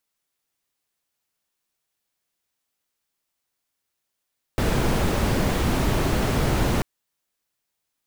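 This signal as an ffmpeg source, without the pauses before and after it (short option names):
-f lavfi -i "anoisesrc=c=brown:a=0.417:d=2.24:r=44100:seed=1"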